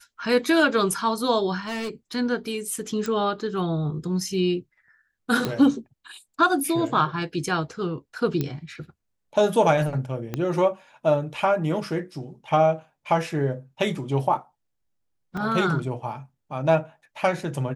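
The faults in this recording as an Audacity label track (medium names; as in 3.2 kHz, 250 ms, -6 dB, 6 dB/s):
1.660000	1.910000	clipped -26.5 dBFS
3.060000	3.060000	pop -16 dBFS
5.450000	5.450000	pop -11 dBFS
8.410000	8.410000	pop -13 dBFS
10.340000	10.340000	pop -14 dBFS
15.370000	15.370000	dropout 3.3 ms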